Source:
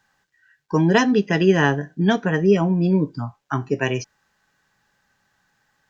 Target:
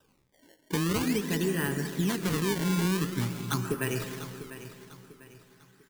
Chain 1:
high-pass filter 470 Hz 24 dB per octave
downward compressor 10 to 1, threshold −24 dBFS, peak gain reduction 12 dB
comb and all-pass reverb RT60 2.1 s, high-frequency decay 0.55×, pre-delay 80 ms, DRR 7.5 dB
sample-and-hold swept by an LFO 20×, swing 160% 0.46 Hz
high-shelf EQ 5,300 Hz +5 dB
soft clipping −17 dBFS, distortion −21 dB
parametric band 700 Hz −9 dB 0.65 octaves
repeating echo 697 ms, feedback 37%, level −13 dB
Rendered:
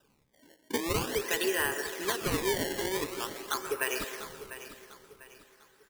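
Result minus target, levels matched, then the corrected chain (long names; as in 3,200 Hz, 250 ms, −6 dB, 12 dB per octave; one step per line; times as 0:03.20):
500 Hz band +3.0 dB
downward compressor 10 to 1, threshold −24 dBFS, peak gain reduction 14.5 dB
comb and all-pass reverb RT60 2.1 s, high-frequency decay 0.55×, pre-delay 80 ms, DRR 7.5 dB
sample-and-hold swept by an LFO 20×, swing 160% 0.46 Hz
high-shelf EQ 5,300 Hz +5 dB
soft clipping −17 dBFS, distortion −22 dB
parametric band 700 Hz −9 dB 0.65 octaves
repeating echo 697 ms, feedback 37%, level −13 dB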